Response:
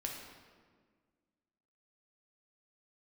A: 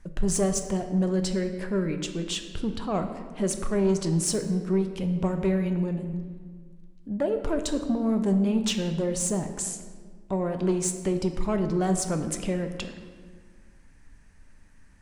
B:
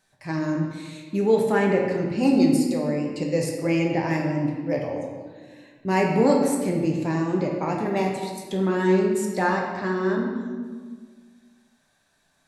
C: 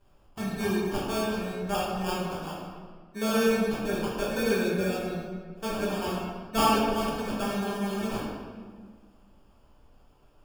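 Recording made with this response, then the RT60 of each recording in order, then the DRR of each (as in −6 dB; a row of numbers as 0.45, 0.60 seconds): B; 1.7, 1.6, 1.6 seconds; 6.0, 0.0, −7.5 decibels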